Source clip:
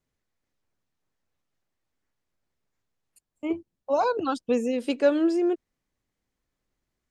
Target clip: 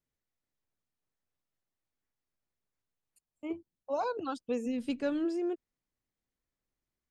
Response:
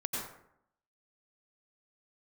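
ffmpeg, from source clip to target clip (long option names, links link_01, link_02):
-filter_complex "[0:a]asplit=3[link_01][link_02][link_03];[link_01]afade=type=out:start_time=4.65:duration=0.02[link_04];[link_02]asubboost=boost=11.5:cutoff=140,afade=type=in:start_time=4.65:duration=0.02,afade=type=out:start_time=5.24:duration=0.02[link_05];[link_03]afade=type=in:start_time=5.24:duration=0.02[link_06];[link_04][link_05][link_06]amix=inputs=3:normalize=0,volume=-9dB"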